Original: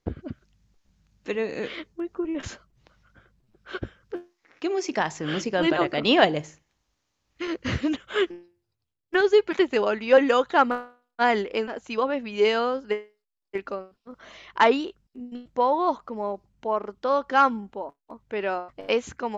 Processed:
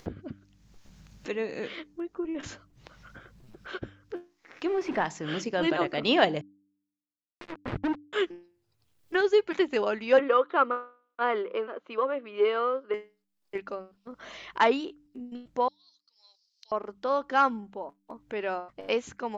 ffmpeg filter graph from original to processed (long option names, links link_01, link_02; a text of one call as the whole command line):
ffmpeg -i in.wav -filter_complex "[0:a]asettb=1/sr,asplit=3[link_01][link_02][link_03];[link_01]atrim=end=4.654[link_04];[link_02]atrim=start=4.65:end=5.05,asetpts=PTS-STARTPTS,afade=type=in:duration=0.004:curve=qsin,afade=type=out:start_time=0.396:duration=0.004:curve=qsin,aeval=exprs='val(0)+0.5*0.0398*sgn(val(0))':channel_layout=same,lowpass=2300[link_05];[link_03]atrim=start=5.046[link_06];[link_04][link_05]acrossfade=duration=0.004:curve1=hsin:curve2=qsin[link_07];[link_07][link_06]acrossfade=duration=0.004:curve1=qsin:curve2=hsin,asettb=1/sr,asplit=3[link_08][link_09][link_10];[link_08]atrim=end=6.414[link_11];[link_09]atrim=start=6.41:end=8.13,asetpts=PTS-STARTPTS,afade=type=in:duration=0.004:curve=qsin,afade=type=out:start_time=1.716:duration=0.004:curve=qsin,lowpass=1100,acrusher=bits=3:mix=0:aa=0.5[link_12];[link_10]atrim=start=8.126[link_13];[link_11][link_12]acrossfade=duration=0.004:curve1=hsin:curve2=qsin[link_14];[link_14][link_13]acrossfade=duration=0.004:curve1=qsin:curve2=hsin,asettb=1/sr,asplit=3[link_15][link_16][link_17];[link_15]atrim=end=10.194[link_18];[link_16]atrim=start=10.19:end=12.94,asetpts=PTS-STARTPTS,afade=type=in:duration=0.004:curve=qsin,afade=type=out:start_time=2.746:duration=0.004:curve=qsin,aeval=exprs='if(lt(val(0),0),0.708*val(0),val(0))':channel_layout=same,highpass=360,equalizer=frequency=370:width_type=q:width=4:gain=6,equalizer=frequency=530:width_type=q:width=4:gain=5,equalizer=frequency=800:width_type=q:width=4:gain=-7,equalizer=frequency=1200:width_type=q:width=4:gain=9,equalizer=frequency=1800:width_type=q:width=4:gain=-5,equalizer=frequency=2600:width_type=q:width=4:gain=-4,lowpass=frequency=3100:width=0.5412,lowpass=frequency=3100:width=1.3066[link_19];[link_17]atrim=start=12.936[link_20];[link_18][link_19]acrossfade=duration=0.004:curve1=hsin:curve2=qsin[link_21];[link_21][link_20]acrossfade=duration=0.004:curve1=qsin:curve2=hsin,asettb=1/sr,asplit=3[link_22][link_23][link_24];[link_22]atrim=end=15.684[link_25];[link_23]atrim=start=15.68:end=16.72,asetpts=PTS-STARTPTS,afade=type=in:duration=0.004:curve=qsin,afade=type=out:start_time=1.036:duration=0.004:curve=qsin,asuperpass=centerf=4800:order=4:qfactor=3.7,acompressor=threshold=-54dB:ratio=2:attack=3.2:release=140:knee=1:detection=peak[link_26];[link_24]atrim=start=16.716[link_27];[link_25][link_26]acrossfade=duration=0.004:curve1=hsin:curve2=qsin[link_28];[link_28][link_27]acrossfade=duration=0.004:curve1=qsin:curve2=hsin,equalizer=frequency=64:width_type=o:width=0.61:gain=-8.5,bandreject=frequency=98.41:width_type=h:width=4,bandreject=frequency=196.82:width_type=h:width=4,bandreject=frequency=295.23:width_type=h:width=4,acompressor=mode=upward:threshold=-32dB:ratio=2.5,volume=-4dB" out.wav